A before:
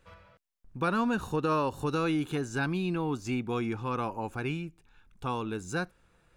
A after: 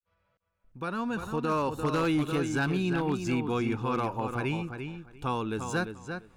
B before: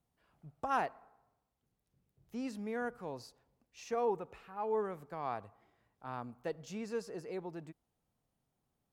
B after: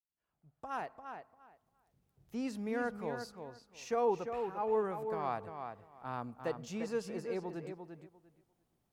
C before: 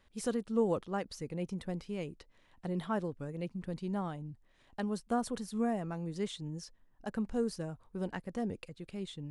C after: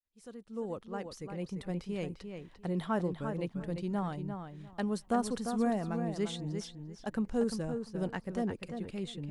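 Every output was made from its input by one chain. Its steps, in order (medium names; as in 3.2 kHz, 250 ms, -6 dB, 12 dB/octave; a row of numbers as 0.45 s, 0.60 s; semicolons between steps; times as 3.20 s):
fade-in on the opening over 2.08 s; filtered feedback delay 347 ms, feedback 18%, low-pass 4.3 kHz, level -7 dB; wavefolder -21.5 dBFS; trim +2 dB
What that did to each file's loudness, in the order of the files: +1.0 LU, +1.5 LU, +1.5 LU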